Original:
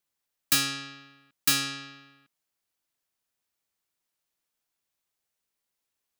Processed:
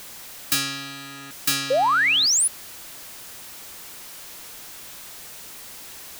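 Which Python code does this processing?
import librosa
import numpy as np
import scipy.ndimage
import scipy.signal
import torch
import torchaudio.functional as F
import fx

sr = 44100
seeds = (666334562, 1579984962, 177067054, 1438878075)

y = x + 0.5 * 10.0 ** (-33.5 / 20.0) * np.sign(x)
y = fx.spec_paint(y, sr, seeds[0], shape='rise', start_s=1.7, length_s=0.78, low_hz=490.0, high_hz=11000.0, level_db=-19.0)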